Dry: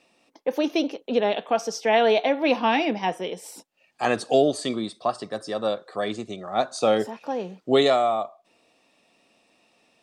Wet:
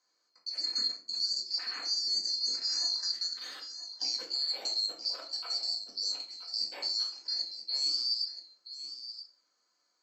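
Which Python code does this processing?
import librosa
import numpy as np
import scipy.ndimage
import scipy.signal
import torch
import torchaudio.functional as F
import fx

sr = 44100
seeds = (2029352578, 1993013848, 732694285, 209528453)

y = fx.band_swap(x, sr, width_hz=4000)
y = scipy.signal.sosfilt(scipy.signal.butter(4, 280.0, 'highpass', fs=sr, output='sos'), y)
y = fx.level_steps(y, sr, step_db=15)
y = fx.air_absorb(y, sr, metres=99.0)
y = y + 10.0 ** (-12.0 / 20.0) * np.pad(y, (int(977 * sr / 1000.0), 0))[:len(y)]
y = fx.room_shoebox(y, sr, seeds[0], volume_m3=350.0, walls='furnished', distance_m=2.0)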